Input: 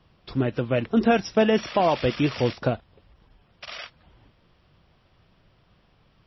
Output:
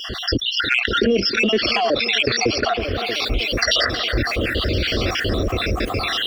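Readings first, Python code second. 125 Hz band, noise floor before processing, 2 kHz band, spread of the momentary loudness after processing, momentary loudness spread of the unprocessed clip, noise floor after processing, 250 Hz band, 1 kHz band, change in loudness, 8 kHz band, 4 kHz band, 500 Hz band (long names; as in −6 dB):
+5.0 dB, −63 dBFS, +14.0 dB, 5 LU, 18 LU, −28 dBFS, +1.5 dB, +4.0 dB, +4.0 dB, can't be measured, +18.5 dB, +3.0 dB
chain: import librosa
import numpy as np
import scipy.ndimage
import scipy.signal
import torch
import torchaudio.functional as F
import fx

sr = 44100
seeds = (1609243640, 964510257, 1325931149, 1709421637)

p1 = fx.spec_dropout(x, sr, seeds[0], share_pct=61)
p2 = fx.recorder_agc(p1, sr, target_db=-17.0, rise_db_per_s=49.0, max_gain_db=30)
p3 = scipy.signal.sosfilt(scipy.signal.butter(2, 48.0, 'highpass', fs=sr, output='sos'), p2)
p4 = fx.vibrato(p3, sr, rate_hz=2.0, depth_cents=7.1)
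p5 = 10.0 ** (-22.5 / 20.0) * np.tanh(p4 / 10.0 ** (-22.5 / 20.0))
p6 = p4 + (p5 * librosa.db_to_amplitude(-9.0))
p7 = fx.fixed_phaser(p6, sr, hz=380.0, stages=4)
p8 = p7 + fx.echo_tape(p7, sr, ms=315, feedback_pct=77, wet_db=-19.5, lp_hz=3200.0, drive_db=13.0, wow_cents=17, dry=0)
p9 = fx.env_flatten(p8, sr, amount_pct=70)
y = p9 * librosa.db_to_amplitude(3.0)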